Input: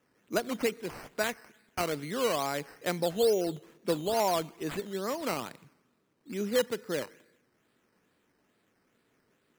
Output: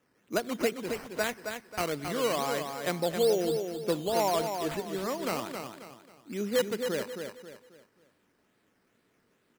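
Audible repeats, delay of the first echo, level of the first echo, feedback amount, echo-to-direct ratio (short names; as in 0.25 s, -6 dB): 4, 0.269 s, -6.5 dB, 35%, -6.0 dB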